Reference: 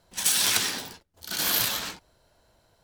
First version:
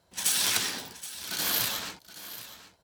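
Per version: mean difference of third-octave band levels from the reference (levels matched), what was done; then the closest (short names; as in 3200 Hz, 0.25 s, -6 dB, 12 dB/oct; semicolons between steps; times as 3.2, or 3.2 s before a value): 1.0 dB: HPF 56 Hz; echo 0.773 s -14.5 dB; gain -3 dB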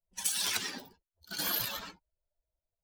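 5.0 dB: per-bin expansion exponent 2; compressor 4:1, threshold -29 dBFS, peak gain reduction 7.5 dB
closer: first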